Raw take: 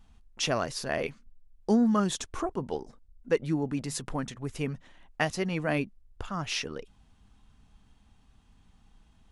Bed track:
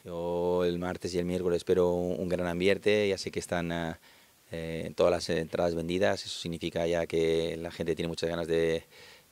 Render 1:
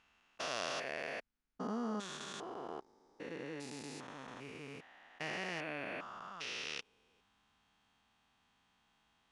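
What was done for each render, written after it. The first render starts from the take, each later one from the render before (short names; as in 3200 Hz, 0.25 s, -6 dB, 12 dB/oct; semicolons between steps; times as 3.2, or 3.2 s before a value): stepped spectrum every 0.4 s; band-pass 2000 Hz, Q 0.51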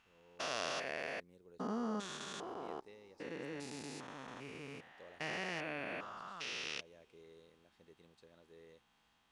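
add bed track -32.5 dB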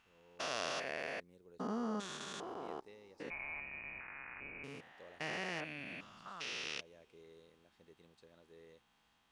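3.3–4.64 inverted band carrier 2700 Hz; 5.64–6.26 band shelf 770 Hz -11.5 dB 2.5 oct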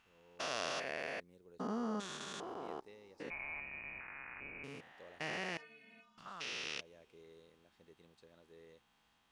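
5.57–6.18 metallic resonator 220 Hz, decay 0.31 s, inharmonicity 0.008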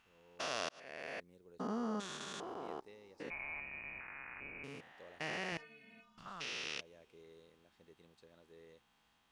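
0.69–1.27 fade in; 5.52–6.46 low shelf 130 Hz +11.5 dB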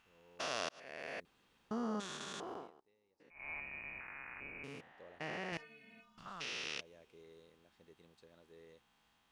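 1.25–1.71 room tone; 2.55–3.5 dip -19.5 dB, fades 0.16 s; 4.81–5.53 high shelf 2800 Hz -9.5 dB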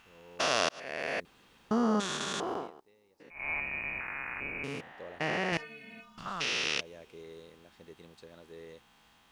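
gain +11 dB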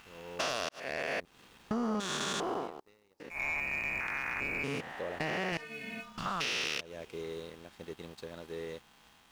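compressor 4:1, threshold -39 dBFS, peak gain reduction 13.5 dB; sample leveller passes 2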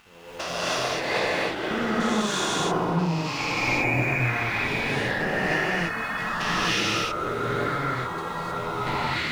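echoes that change speed 0.316 s, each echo -5 st, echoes 2; non-linear reverb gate 0.33 s rising, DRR -8 dB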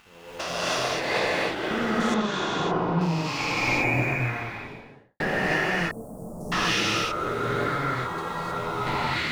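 2.14–3.01 air absorption 170 m; 3.87–5.2 studio fade out; 5.91–6.52 Chebyshev band-stop 590–8600 Hz, order 3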